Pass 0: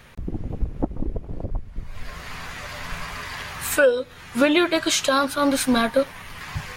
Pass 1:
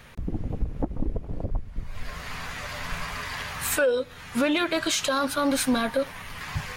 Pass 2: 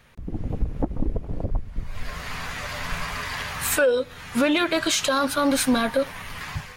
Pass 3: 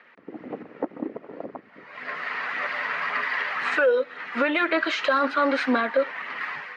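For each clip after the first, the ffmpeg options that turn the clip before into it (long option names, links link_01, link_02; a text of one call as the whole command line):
ffmpeg -i in.wav -af "bandreject=frequency=360:width=12,acontrast=70,alimiter=limit=-9dB:level=0:latency=1:release=69,volume=-7dB" out.wav
ffmpeg -i in.wav -af "dynaudnorm=framelen=130:gausssize=5:maxgain=10dB,volume=-7dB" out.wav
ffmpeg -i in.wav -af "highpass=frequency=270:width=0.5412,highpass=frequency=270:width=1.3066,equalizer=frequency=1300:width_type=q:width=4:gain=5,equalizer=frequency=1900:width_type=q:width=4:gain=8,equalizer=frequency=3500:width_type=q:width=4:gain=-6,lowpass=frequency=3700:width=0.5412,lowpass=frequency=3700:width=1.3066,aphaser=in_gain=1:out_gain=1:delay=2.2:decay=0.28:speed=1.9:type=sinusoidal,alimiter=limit=-12dB:level=0:latency=1:release=308" out.wav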